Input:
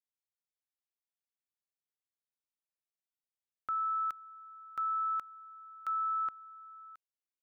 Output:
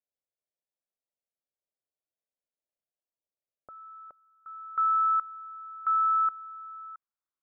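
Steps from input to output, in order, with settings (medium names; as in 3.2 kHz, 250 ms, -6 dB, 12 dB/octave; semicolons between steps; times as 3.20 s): resonant low-pass 600 Hz, resonance Q 3.6, from 4.46 s 1.3 kHz; trim -2.5 dB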